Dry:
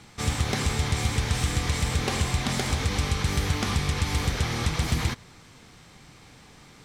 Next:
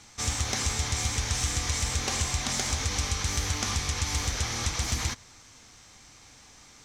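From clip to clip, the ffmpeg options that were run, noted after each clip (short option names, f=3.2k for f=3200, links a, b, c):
-af "equalizer=f=160:t=o:w=0.67:g=-11,equalizer=f=400:t=o:w=0.67:g=-5,equalizer=f=6.3k:t=o:w=0.67:g=11,volume=-3dB"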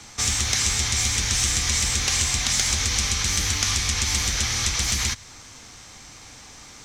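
-filter_complex "[0:a]acrossover=split=110|1500|4000[a][b][c][d];[a]asoftclip=type=hard:threshold=-35dB[e];[b]acompressor=threshold=-46dB:ratio=6[f];[e][f][c][d]amix=inputs=4:normalize=0,volume=8.5dB"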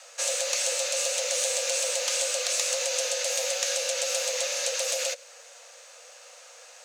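-af "acrusher=bits=8:mode=log:mix=0:aa=0.000001,afreqshift=460,volume=-5dB"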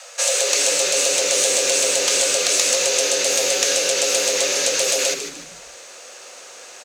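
-filter_complex "[0:a]asplit=5[a][b][c][d][e];[b]adelay=151,afreqshift=-120,volume=-9dB[f];[c]adelay=302,afreqshift=-240,volume=-18.1dB[g];[d]adelay=453,afreqshift=-360,volume=-27.2dB[h];[e]adelay=604,afreqshift=-480,volume=-36.4dB[i];[a][f][g][h][i]amix=inputs=5:normalize=0,volume=8.5dB"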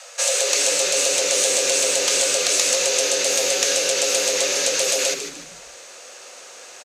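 -af "aresample=32000,aresample=44100,volume=-1dB"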